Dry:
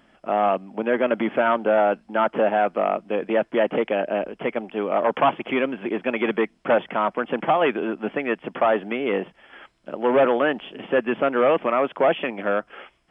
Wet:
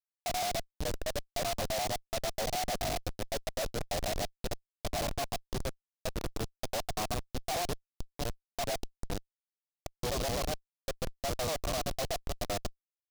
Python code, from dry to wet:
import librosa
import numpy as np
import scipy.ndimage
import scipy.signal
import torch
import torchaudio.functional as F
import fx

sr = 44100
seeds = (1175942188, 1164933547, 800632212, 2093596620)

y = fx.local_reverse(x, sr, ms=85.0)
y = fx.vowel_filter(y, sr, vowel='a')
y = fx.schmitt(y, sr, flips_db=-31.0)
y = fx.noise_mod_delay(y, sr, seeds[0], noise_hz=4000.0, depth_ms=0.1)
y = y * 10.0 ** (-1.5 / 20.0)